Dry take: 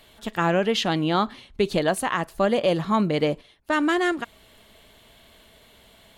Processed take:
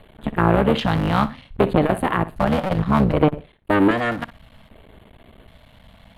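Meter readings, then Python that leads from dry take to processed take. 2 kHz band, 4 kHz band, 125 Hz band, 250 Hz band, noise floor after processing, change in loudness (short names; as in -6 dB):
+1.0 dB, -3.5 dB, +9.0 dB, +5.0 dB, -52 dBFS, +3.5 dB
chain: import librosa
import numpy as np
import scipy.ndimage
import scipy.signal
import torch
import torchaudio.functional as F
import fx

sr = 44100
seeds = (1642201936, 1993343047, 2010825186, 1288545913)

p1 = fx.cycle_switch(x, sr, every=3, mode='muted')
p2 = scipy.signal.sosfilt(scipy.signal.butter(2, 9900.0, 'lowpass', fs=sr, output='sos'), p1)
p3 = fx.low_shelf(p2, sr, hz=430.0, db=8.5)
p4 = fx.filter_lfo_notch(p3, sr, shape='square', hz=0.64, low_hz=380.0, high_hz=5500.0, q=0.94)
p5 = fx.peak_eq(p4, sr, hz=6700.0, db=-15.0, octaves=1.4)
p6 = p5 + fx.room_flutter(p5, sr, wall_m=10.4, rt60_s=0.23, dry=0)
p7 = fx.transformer_sat(p6, sr, knee_hz=520.0)
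y = p7 * 10.0 ** (5.0 / 20.0)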